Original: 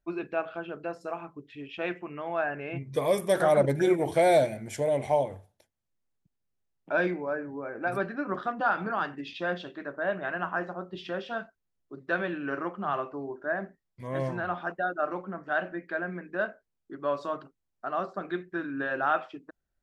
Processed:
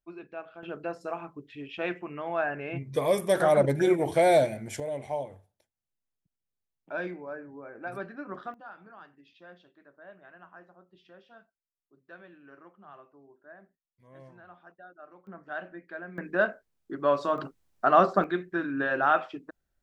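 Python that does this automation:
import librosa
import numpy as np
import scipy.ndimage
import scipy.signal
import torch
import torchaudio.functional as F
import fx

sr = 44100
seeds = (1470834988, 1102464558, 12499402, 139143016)

y = fx.gain(x, sr, db=fx.steps((0.0, -10.0), (0.63, 0.5), (4.8, -7.5), (8.54, -20.0), (15.27, -8.0), (16.18, 5.0), (17.38, 11.5), (18.24, 3.0)))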